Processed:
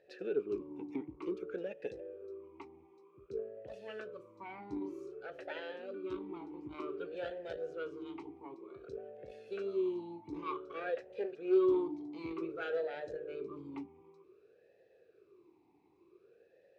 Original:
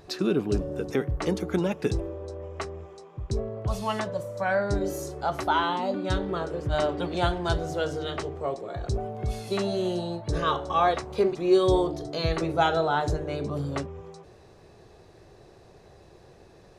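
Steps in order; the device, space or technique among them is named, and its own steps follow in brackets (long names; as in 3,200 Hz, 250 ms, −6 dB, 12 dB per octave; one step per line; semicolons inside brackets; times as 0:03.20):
talk box (tube saturation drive 17 dB, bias 0.75; formant filter swept between two vowels e-u 0.54 Hz)
level +1.5 dB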